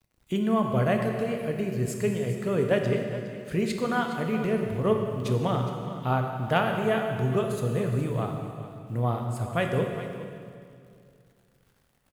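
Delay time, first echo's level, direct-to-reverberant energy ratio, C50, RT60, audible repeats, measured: 414 ms, −14.0 dB, 2.5 dB, 3.5 dB, 2.3 s, 1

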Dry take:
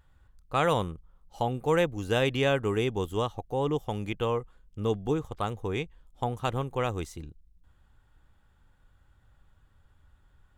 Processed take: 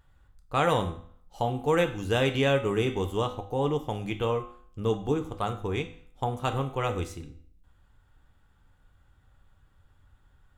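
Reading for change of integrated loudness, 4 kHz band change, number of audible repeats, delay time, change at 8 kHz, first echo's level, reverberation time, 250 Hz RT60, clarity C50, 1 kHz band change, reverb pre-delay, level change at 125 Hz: +1.0 dB, +1.0 dB, no echo audible, no echo audible, +1.0 dB, no echo audible, 0.55 s, 0.55 s, 11.5 dB, +1.0 dB, 4 ms, +1.0 dB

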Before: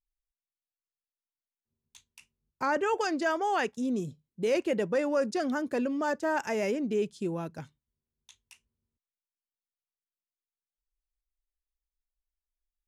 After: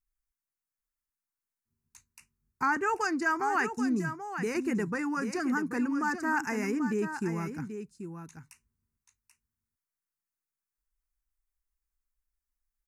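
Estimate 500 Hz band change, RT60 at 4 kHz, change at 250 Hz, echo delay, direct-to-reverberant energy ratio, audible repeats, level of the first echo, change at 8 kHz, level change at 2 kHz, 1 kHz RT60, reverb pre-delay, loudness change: −6.5 dB, no reverb audible, +1.5 dB, 785 ms, no reverb audible, 1, −9.0 dB, +1.5 dB, +3.5 dB, no reverb audible, no reverb audible, −0.5 dB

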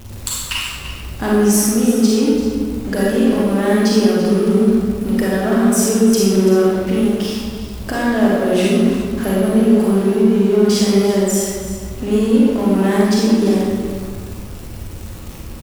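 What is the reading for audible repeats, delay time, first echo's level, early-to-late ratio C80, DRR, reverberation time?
1, 339 ms, −12.0 dB, 0.0 dB, −6.0 dB, 1.7 s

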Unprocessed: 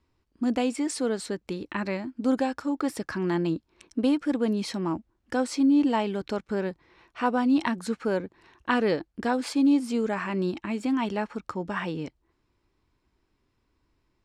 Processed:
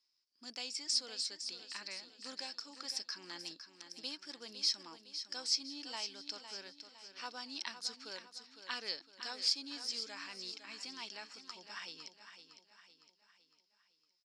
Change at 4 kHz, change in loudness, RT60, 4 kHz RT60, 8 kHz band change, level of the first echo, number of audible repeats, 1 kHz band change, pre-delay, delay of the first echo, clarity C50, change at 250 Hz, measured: +4.0 dB, −12.5 dB, no reverb audible, no reverb audible, −1.5 dB, −10.0 dB, 4, −19.5 dB, no reverb audible, 508 ms, no reverb audible, −31.0 dB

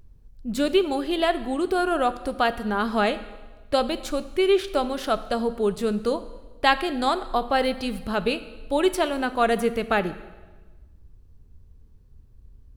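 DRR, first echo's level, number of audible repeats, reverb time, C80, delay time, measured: 12.0 dB, no echo audible, no echo audible, 1.3 s, 16.0 dB, no echo audible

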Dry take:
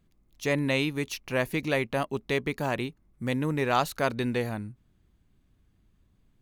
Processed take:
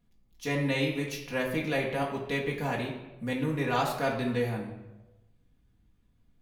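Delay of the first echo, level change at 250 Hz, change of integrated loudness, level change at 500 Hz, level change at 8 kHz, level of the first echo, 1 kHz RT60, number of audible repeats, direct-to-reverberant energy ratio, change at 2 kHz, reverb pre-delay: no echo audible, −1.5 dB, −1.5 dB, −2.0 dB, −3.5 dB, no echo audible, 0.95 s, no echo audible, −3.0 dB, −2.0 dB, 4 ms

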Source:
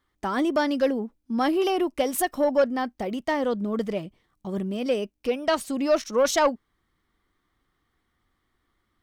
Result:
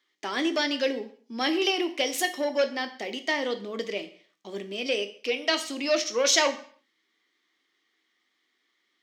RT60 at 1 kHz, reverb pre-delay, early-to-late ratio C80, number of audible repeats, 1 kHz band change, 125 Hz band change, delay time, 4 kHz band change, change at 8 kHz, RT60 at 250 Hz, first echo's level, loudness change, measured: 0.50 s, 5 ms, 17.0 dB, no echo audible, −5.0 dB, below −10 dB, no echo audible, +8.0 dB, +4.5 dB, 0.45 s, no echo audible, −1.5 dB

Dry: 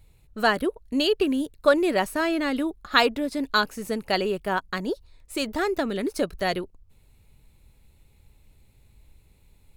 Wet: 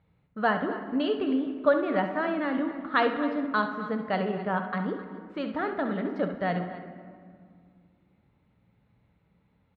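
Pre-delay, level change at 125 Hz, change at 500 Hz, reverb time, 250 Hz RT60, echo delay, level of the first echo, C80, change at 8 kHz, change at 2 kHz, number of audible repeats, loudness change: 4 ms, +3.0 dB, −3.5 dB, 2.1 s, 2.9 s, 68 ms, −10.5 dB, 9.0 dB, below −35 dB, −4.5 dB, 2, −3.5 dB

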